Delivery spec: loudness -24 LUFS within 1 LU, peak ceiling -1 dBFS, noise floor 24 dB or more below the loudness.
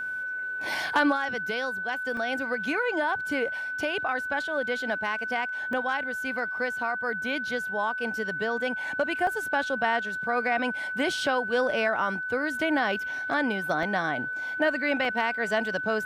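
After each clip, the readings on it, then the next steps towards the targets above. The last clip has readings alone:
dropouts 5; longest dropout 2.0 ms; steady tone 1.5 kHz; tone level -30 dBFS; loudness -27.5 LUFS; peak level -12.0 dBFS; loudness target -24.0 LUFS
-> interpolate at 2.17/5.73/9.27/13.83/15.05 s, 2 ms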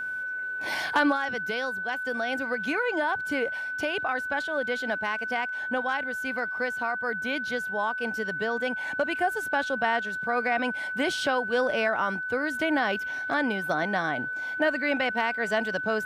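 dropouts 0; steady tone 1.5 kHz; tone level -30 dBFS
-> band-stop 1.5 kHz, Q 30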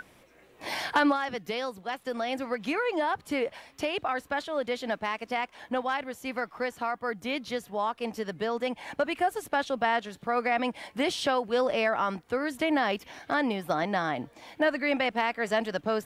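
steady tone not found; loudness -30.0 LUFS; peak level -12.0 dBFS; loudness target -24.0 LUFS
-> trim +6 dB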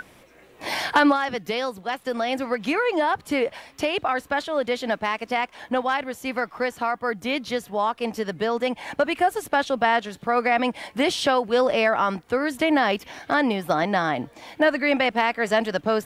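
loudness -24.0 LUFS; peak level -6.0 dBFS; noise floor -53 dBFS

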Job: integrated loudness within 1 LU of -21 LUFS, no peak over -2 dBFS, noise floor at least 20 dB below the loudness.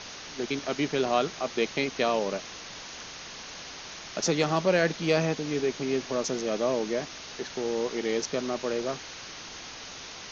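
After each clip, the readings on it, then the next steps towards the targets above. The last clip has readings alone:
noise floor -43 dBFS; noise floor target -50 dBFS; loudness -29.5 LUFS; peak level -11.0 dBFS; loudness target -21.0 LUFS
-> noise reduction 7 dB, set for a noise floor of -43 dBFS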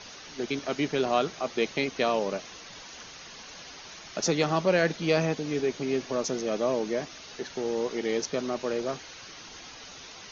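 noise floor -46 dBFS; noise floor target -49 dBFS
-> noise reduction 6 dB, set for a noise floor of -46 dBFS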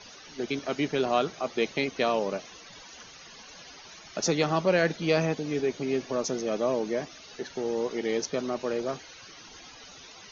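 noise floor -49 dBFS; loudness -29.0 LUFS; peak level -11.0 dBFS; loudness target -21.0 LUFS
-> trim +8 dB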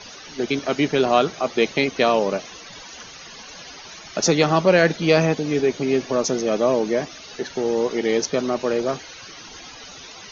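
loudness -21.0 LUFS; peak level -3.0 dBFS; noise floor -41 dBFS

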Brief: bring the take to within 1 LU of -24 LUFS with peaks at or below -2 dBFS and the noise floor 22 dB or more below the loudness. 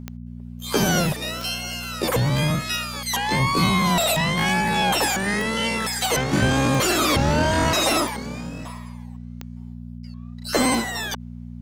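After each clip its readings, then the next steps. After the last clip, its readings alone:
clicks found 9; hum 60 Hz; highest harmonic 240 Hz; hum level -32 dBFS; loudness -21.0 LUFS; peak level -8.0 dBFS; loudness target -24.0 LUFS
-> de-click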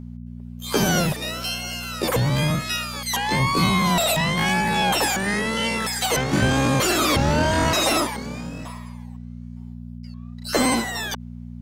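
clicks found 0; hum 60 Hz; highest harmonic 240 Hz; hum level -32 dBFS
-> de-hum 60 Hz, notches 4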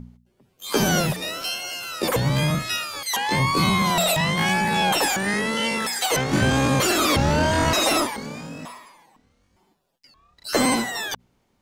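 hum not found; loudness -21.5 LUFS; peak level -8.0 dBFS; loudness target -24.0 LUFS
-> trim -2.5 dB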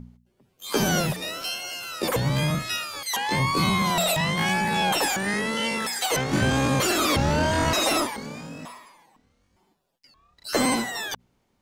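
loudness -24.0 LUFS; peak level -10.5 dBFS; noise floor -69 dBFS

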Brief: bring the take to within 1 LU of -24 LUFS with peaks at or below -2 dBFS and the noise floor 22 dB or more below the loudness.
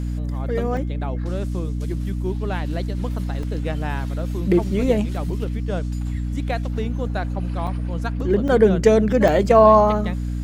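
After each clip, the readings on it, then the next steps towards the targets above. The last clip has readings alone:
dropouts 5; longest dropout 2.8 ms; hum 60 Hz; highest harmonic 300 Hz; hum level -22 dBFS; loudness -21.0 LUFS; peak level -2.5 dBFS; loudness target -24.0 LUFS
-> interpolate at 0.77/3.43/7.67/8.48/9.28 s, 2.8 ms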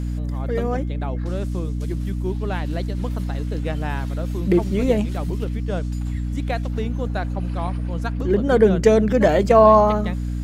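dropouts 0; hum 60 Hz; highest harmonic 300 Hz; hum level -22 dBFS
-> hum notches 60/120/180/240/300 Hz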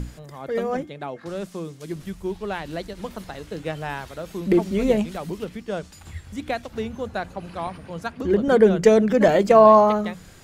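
hum not found; loudness -20.5 LUFS; peak level -2.5 dBFS; loudness target -24.0 LUFS
-> trim -3.5 dB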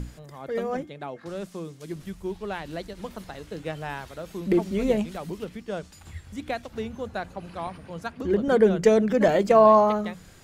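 loudness -24.0 LUFS; peak level -6.0 dBFS; noise floor -50 dBFS

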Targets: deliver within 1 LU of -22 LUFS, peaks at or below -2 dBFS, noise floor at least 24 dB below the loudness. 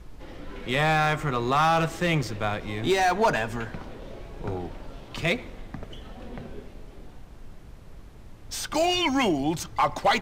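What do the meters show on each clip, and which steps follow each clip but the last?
clipped samples 0.5%; clipping level -15.0 dBFS; noise floor -46 dBFS; noise floor target -50 dBFS; loudness -25.5 LUFS; peak level -15.0 dBFS; loudness target -22.0 LUFS
-> clip repair -15 dBFS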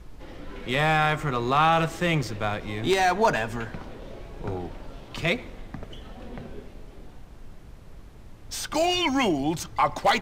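clipped samples 0.0%; noise floor -46 dBFS; noise floor target -49 dBFS
-> noise print and reduce 6 dB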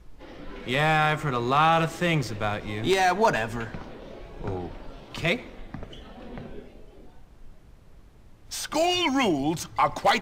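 noise floor -51 dBFS; loudness -25.0 LUFS; peak level -6.0 dBFS; loudness target -22.0 LUFS
-> trim +3 dB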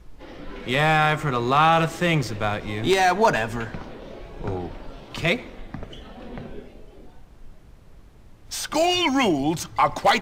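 loudness -22.0 LUFS; peak level -3.0 dBFS; noise floor -48 dBFS

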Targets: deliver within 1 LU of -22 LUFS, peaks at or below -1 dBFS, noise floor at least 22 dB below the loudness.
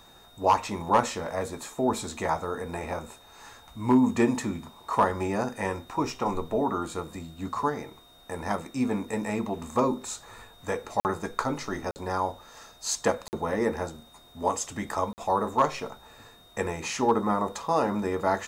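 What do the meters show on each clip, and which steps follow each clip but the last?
dropouts 4; longest dropout 49 ms; steady tone 3.7 kHz; tone level -55 dBFS; loudness -28.5 LUFS; peak level -11.0 dBFS; loudness target -22.0 LUFS
-> interpolate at 11.00/11.91/13.28/15.13 s, 49 ms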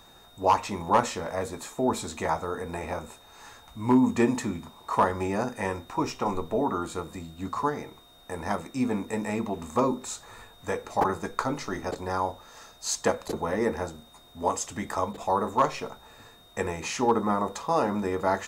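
dropouts 0; steady tone 3.7 kHz; tone level -55 dBFS
-> band-stop 3.7 kHz, Q 30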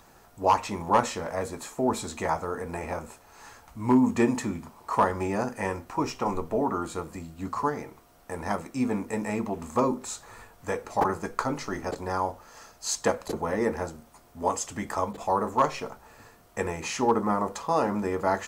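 steady tone not found; loudness -28.5 LUFS; peak level -11.0 dBFS; loudness target -22.0 LUFS
-> trim +6.5 dB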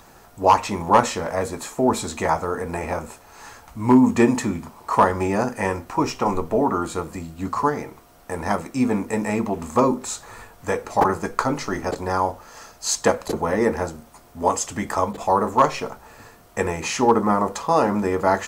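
loudness -22.0 LUFS; peak level -4.5 dBFS; noise floor -49 dBFS

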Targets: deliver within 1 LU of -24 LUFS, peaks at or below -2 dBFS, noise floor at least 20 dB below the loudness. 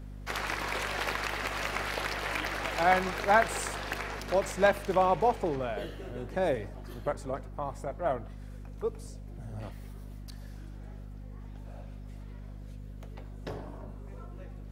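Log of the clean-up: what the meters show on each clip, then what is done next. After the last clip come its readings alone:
hum 50 Hz; highest harmonic 250 Hz; hum level -41 dBFS; loudness -31.0 LUFS; peak level -11.0 dBFS; loudness target -24.0 LUFS
-> hum notches 50/100/150/200/250 Hz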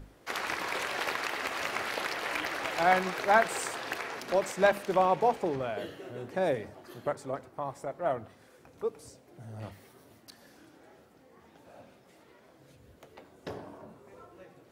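hum not found; loudness -31.0 LUFS; peak level -10.5 dBFS; loudness target -24.0 LUFS
-> trim +7 dB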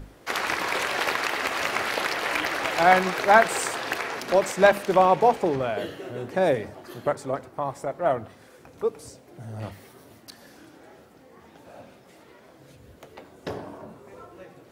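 loudness -24.0 LUFS; peak level -3.5 dBFS; noise floor -53 dBFS

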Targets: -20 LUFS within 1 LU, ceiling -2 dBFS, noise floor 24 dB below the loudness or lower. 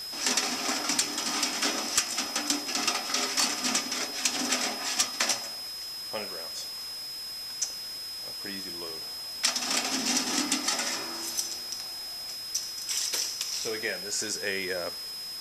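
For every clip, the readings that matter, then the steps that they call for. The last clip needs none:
steady tone 5.1 kHz; tone level -36 dBFS; noise floor -38 dBFS; noise floor target -53 dBFS; loudness -29.0 LUFS; peak level -10.5 dBFS; loudness target -20.0 LUFS
-> band-stop 5.1 kHz, Q 30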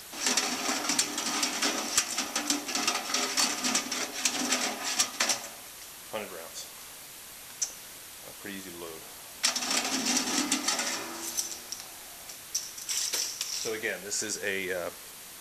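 steady tone not found; noise floor -46 dBFS; noise floor target -53 dBFS
-> noise reduction 7 dB, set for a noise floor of -46 dBFS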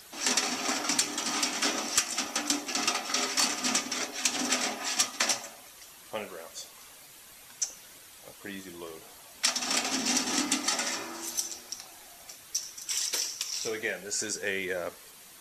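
noise floor -51 dBFS; noise floor target -53 dBFS
-> noise reduction 6 dB, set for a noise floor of -51 dBFS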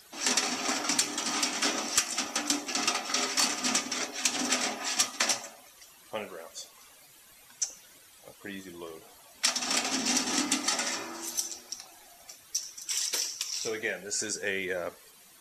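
noise floor -56 dBFS; loudness -29.0 LUFS; peak level -11.5 dBFS; loudness target -20.0 LUFS
-> trim +9 dB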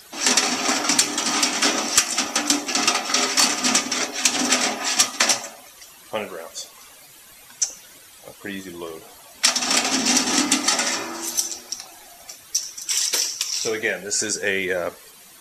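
loudness -20.0 LUFS; peak level -2.5 dBFS; noise floor -47 dBFS

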